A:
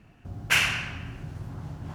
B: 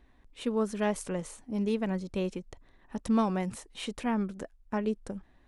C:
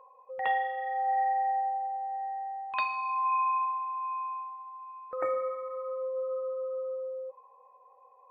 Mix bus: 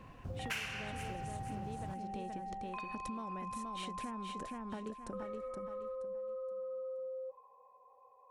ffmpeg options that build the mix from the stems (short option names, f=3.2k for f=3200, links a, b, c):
-filter_complex "[0:a]volume=-0.5dB,asplit=2[a][b];[b]volume=-21.5dB[c];[1:a]acompressor=threshold=-39dB:ratio=3,volume=0dB,asplit=2[d][e];[e]volume=-5dB[f];[2:a]lowshelf=f=290:g=11,acompressor=threshold=-32dB:ratio=6,volume=-5.5dB[g];[c][f]amix=inputs=2:normalize=0,aecho=0:1:473|946|1419|1892:1|0.29|0.0841|0.0244[h];[a][d][g][h]amix=inputs=4:normalize=0,acompressor=threshold=-39dB:ratio=5"